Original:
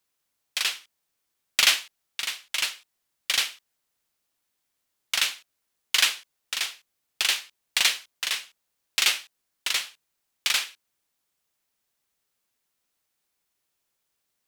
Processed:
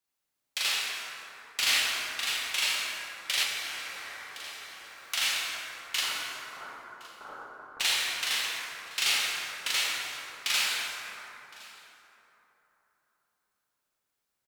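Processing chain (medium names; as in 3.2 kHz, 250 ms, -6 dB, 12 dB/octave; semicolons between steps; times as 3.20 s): waveshaping leveller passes 1; peak limiter -11 dBFS, peak gain reduction 6 dB; 6.01–7.80 s: rippled Chebyshev low-pass 1.5 kHz, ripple 3 dB; delay 1064 ms -22.5 dB; reverberation RT60 3.7 s, pre-delay 18 ms, DRR -6 dB; 3.43–5.14 s: three bands compressed up and down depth 70%; trim -7.5 dB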